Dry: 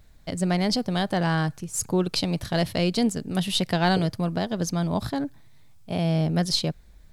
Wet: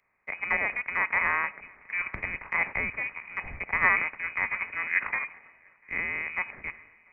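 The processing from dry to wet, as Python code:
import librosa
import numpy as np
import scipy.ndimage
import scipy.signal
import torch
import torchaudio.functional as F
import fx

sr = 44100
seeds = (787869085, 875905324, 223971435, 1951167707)

p1 = fx.bin_compress(x, sr, power=0.6)
p2 = scipy.signal.sosfilt(scipy.signal.butter(2, 430.0, 'highpass', fs=sr, output='sos'), p1)
p3 = fx.rider(p2, sr, range_db=3, speed_s=2.0)
p4 = p3 + fx.echo_swing(p3, sr, ms=926, ratio=3, feedback_pct=47, wet_db=-17.0, dry=0)
p5 = fx.freq_invert(p4, sr, carrier_hz=2700)
p6 = fx.band_widen(p5, sr, depth_pct=100)
y = F.gain(torch.from_numpy(p6), -3.0).numpy()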